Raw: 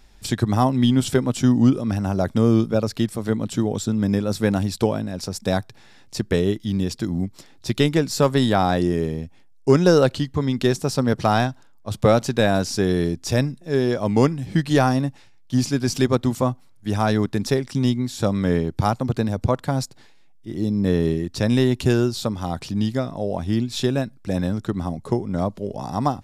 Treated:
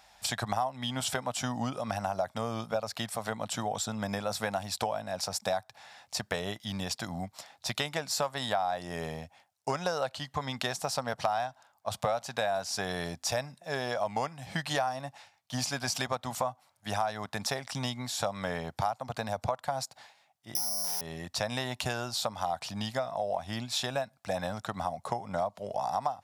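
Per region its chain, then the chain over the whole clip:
20.55–21.01 s: Chebyshev band-pass 130–3400 Hz, order 5 + careless resampling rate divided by 8×, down none, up zero stuff + hard clipper -9.5 dBFS
whole clip: high-pass 74 Hz; resonant low shelf 500 Hz -11.5 dB, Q 3; compression 6:1, threshold -28 dBFS

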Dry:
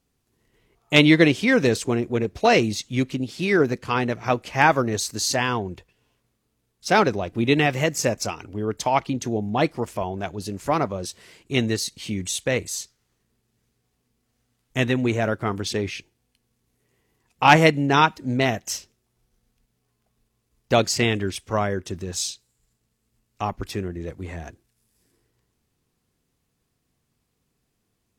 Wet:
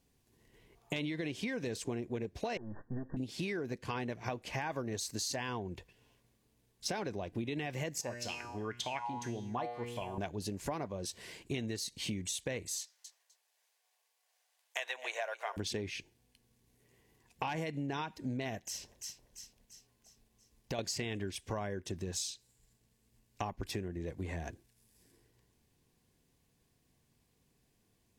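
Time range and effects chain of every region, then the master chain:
2.57–3.17 s: partial rectifier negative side -12 dB + compression 12:1, threshold -28 dBFS + brick-wall FIR low-pass 1.9 kHz
8.01–10.18 s: feedback comb 120 Hz, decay 0.89 s, mix 80% + sweeping bell 1.8 Hz 770–3400 Hz +17 dB
12.79–15.57 s: steep high-pass 600 Hz + feedback delay 253 ms, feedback 17%, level -16.5 dB
18.58–20.79 s: echo whose repeats swap between lows and highs 171 ms, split 950 Hz, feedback 69%, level -11.5 dB + compression 2.5:1, threshold -37 dBFS
whole clip: band-stop 1.3 kHz, Q 5.4; peak limiter -13 dBFS; compression 8:1, threshold -35 dBFS

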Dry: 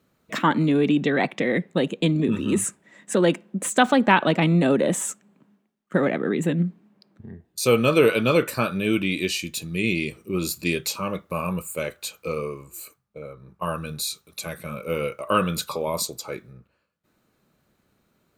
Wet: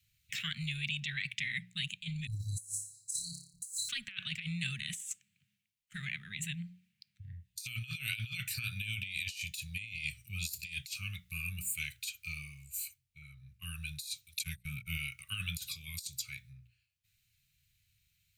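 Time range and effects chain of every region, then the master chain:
2.27–3.89 s: brick-wall FIR band-stop 160–3900 Hz + flutter echo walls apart 5 m, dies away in 0.49 s
14.39–14.97 s: gate -36 dBFS, range -30 dB + peaking EQ 190 Hz +7.5 dB 2.5 oct
whole clip: elliptic band-stop 110–2400 Hz, stop band 50 dB; hum notches 60/120/180 Hz; compressor with a negative ratio -34 dBFS, ratio -0.5; trim -3 dB

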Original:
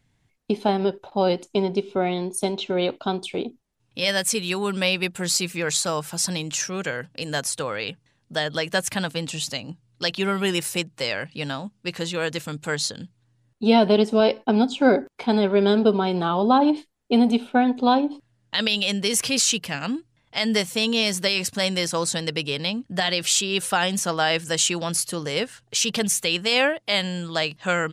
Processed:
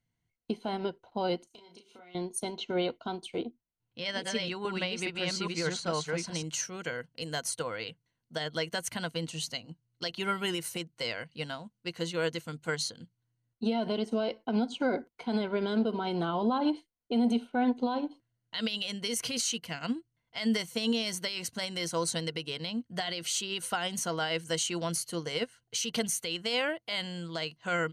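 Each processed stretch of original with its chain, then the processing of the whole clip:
1.47–2.15 s: tilt EQ +3.5 dB/octave + compression, threshold -37 dBFS + doubling 34 ms -4 dB
3.41–6.43 s: chunks repeated in reverse 413 ms, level -2 dB + distance through air 110 m
whole clip: rippled EQ curve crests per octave 1.9, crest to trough 8 dB; peak limiter -14.5 dBFS; upward expansion 1.5:1, over -43 dBFS; trim -4.5 dB

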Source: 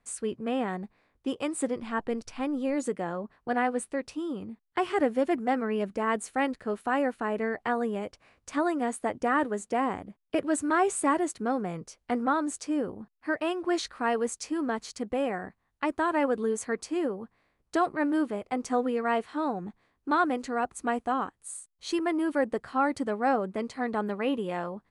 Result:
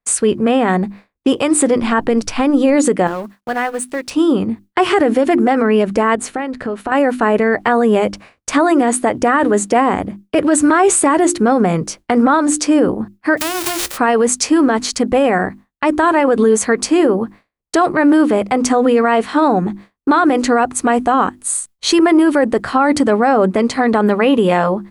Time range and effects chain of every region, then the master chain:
3.07–4.11 s: companding laws mixed up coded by A + tilt shelf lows -3.5 dB, about 1.2 kHz + compression 2:1, threshold -44 dBFS
6.15–6.92 s: low-pass 3.7 kHz 6 dB/octave + compression 8:1, threshold -38 dBFS
13.37–13.96 s: formants flattened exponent 0.1 + compression 8:1, threshold -36 dBFS
whole clip: hum notches 50/100/150/200/250/300/350 Hz; expander -50 dBFS; loudness maximiser +24.5 dB; trim -3.5 dB

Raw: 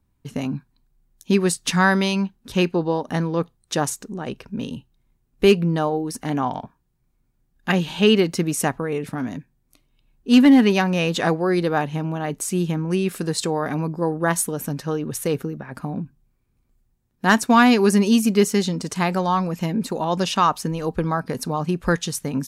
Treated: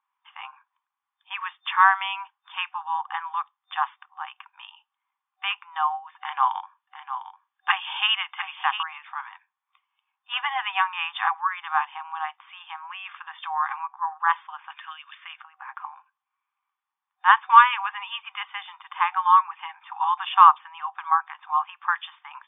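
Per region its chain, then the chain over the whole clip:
6.17–8.83 s: treble shelf 3.6 kHz +10 dB + delay 702 ms -10.5 dB
14.70–15.38 s: Butterworth band-pass 4.5 kHz, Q 0.56 + three bands compressed up and down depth 100%
whole clip: FFT band-pass 760–3600 Hz; peaking EQ 1.1 kHz +11.5 dB 0.41 oct; trim -2 dB

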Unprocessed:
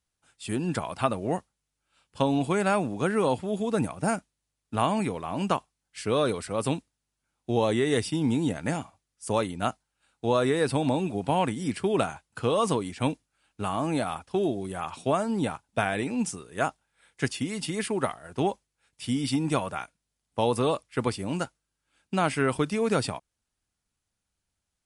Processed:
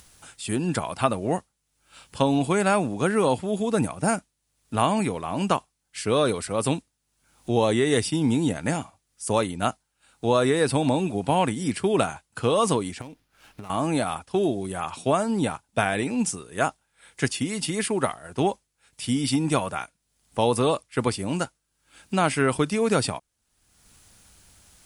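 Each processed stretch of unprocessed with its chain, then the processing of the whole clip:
13.01–13.70 s: compression 8:1, threshold -40 dBFS + sliding maximum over 5 samples
whole clip: treble shelf 7 kHz +6 dB; upward compressor, threshold -38 dBFS; trim +3 dB

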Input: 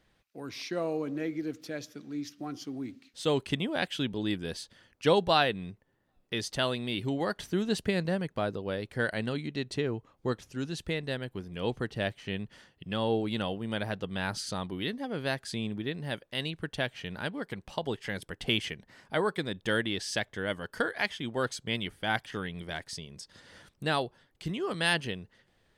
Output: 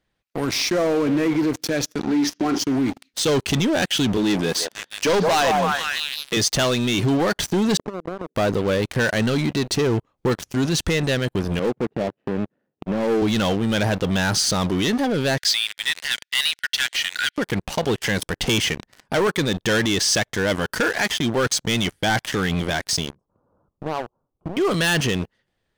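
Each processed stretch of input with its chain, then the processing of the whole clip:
1.99–2.59 s: cabinet simulation 200–6700 Hz, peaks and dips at 210 Hz +8 dB, 390 Hz +9 dB, 1.8 kHz +6 dB + flutter echo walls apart 7.2 m, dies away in 0.22 s
4.17–6.37 s: high-pass 140 Hz 24 dB/octave + repeats whose band climbs or falls 162 ms, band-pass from 740 Hz, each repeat 0.7 oct, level -4 dB
7.77–8.35 s: Butterworth band-pass 360 Hz, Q 1.3 + compression 12:1, threshold -44 dBFS
11.59–13.22 s: median filter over 41 samples + high-pass 210 Hz + tape spacing loss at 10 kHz 28 dB
15.38–17.38 s: rippled Chebyshev high-pass 1.4 kHz, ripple 6 dB + peaking EQ 3.2 kHz +13 dB 1.7 oct
23.10–24.57 s: elliptic low-pass 1.2 kHz + dynamic bell 130 Hz, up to -3 dB, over -43 dBFS, Q 0.7 + compression 2:1, threshold -54 dBFS
whole clip: waveshaping leveller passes 5; peak limiter -19 dBFS; dynamic bell 6.1 kHz, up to +5 dB, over -46 dBFS, Q 2.7; trim +4 dB

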